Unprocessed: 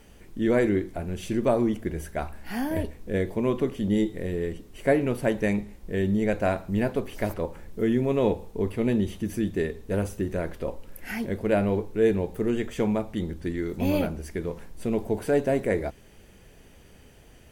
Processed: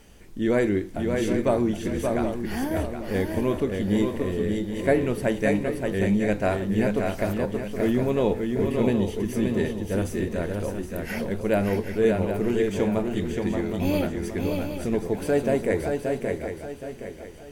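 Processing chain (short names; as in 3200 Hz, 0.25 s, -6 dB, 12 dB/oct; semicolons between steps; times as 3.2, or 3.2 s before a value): bell 5900 Hz +3 dB 1.6 oct; swung echo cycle 0.77 s, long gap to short 3:1, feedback 35%, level -4.5 dB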